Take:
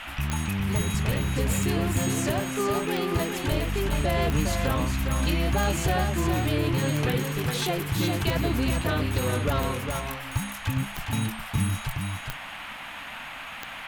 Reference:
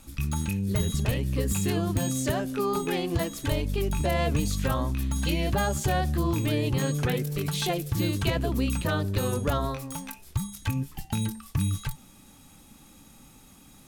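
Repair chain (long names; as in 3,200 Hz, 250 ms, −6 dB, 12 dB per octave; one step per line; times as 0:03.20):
click removal
noise reduction from a noise print 14 dB
echo removal 410 ms −5.5 dB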